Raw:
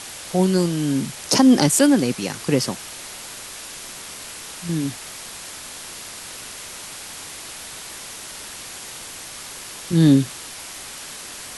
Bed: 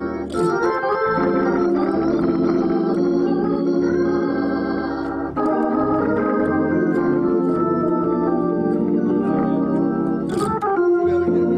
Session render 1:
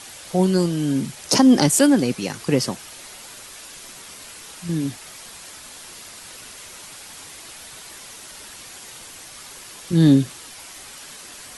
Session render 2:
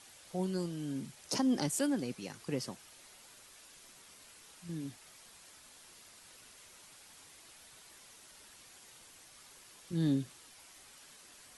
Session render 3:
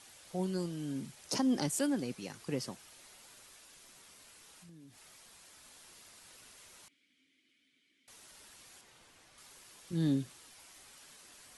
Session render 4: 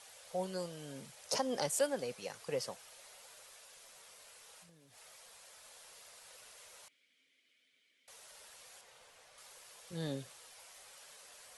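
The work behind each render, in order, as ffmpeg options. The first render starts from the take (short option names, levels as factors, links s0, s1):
-af "afftdn=nr=6:nf=-37"
-af "volume=0.141"
-filter_complex "[0:a]asettb=1/sr,asplit=3[s0][s1][s2];[s0]atrim=end=3.554[s3];[s1]atrim=start=3.55:end=5.65,asetpts=PTS-STARTPTS,afade=t=in:d=0.004:c=qsin,afade=t=out:st=2.096:d=0.004:c=qsin,acompressor=threshold=0.00224:ratio=6:attack=3.2:release=140:knee=1:detection=peak[s4];[s2]atrim=start=5.646[s5];[s3][s4]acrossfade=d=0.004:c1=hsin:c2=qsin[s6];[s6][s5]acrossfade=d=0.004:c1=qsin:c2=hsin,asettb=1/sr,asplit=3[s7][s8][s9];[s7]atrim=end=6.884[s10];[s8]atrim=start=6.88:end=8.08,asetpts=PTS-STARTPTS,afade=t=in:d=0.004:c=qsin,afade=t=out:st=1.196:d=0.004:c=qsin,asplit=3[s11][s12][s13];[s11]bandpass=f=270:t=q:w=8,volume=1[s14];[s12]bandpass=f=2290:t=q:w=8,volume=0.501[s15];[s13]bandpass=f=3010:t=q:w=8,volume=0.355[s16];[s14][s15][s16]amix=inputs=3:normalize=0[s17];[s9]atrim=start=8.076[s18];[s10][s17]acrossfade=d=0.004:c1=hsin:c2=qsin[s19];[s19][s18]acrossfade=d=0.004:c1=qsin:c2=hsin,asettb=1/sr,asplit=3[s20][s21][s22];[s20]atrim=end=8.814[s23];[s21]atrim=start=8.81:end=9.38,asetpts=PTS-STARTPTS,afade=t=in:d=0.004:c=qsin,afade=t=out:st=0.566:d=0.004:c=qsin,highshelf=f=5300:g=-11.5[s24];[s22]atrim=start=9.376[s25];[s23][s24]acrossfade=d=0.004:c1=hsin:c2=qsin[s26];[s26][s25]acrossfade=d=0.004:c1=qsin:c2=hsin"
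-af "lowshelf=f=400:t=q:w=3:g=-7.5"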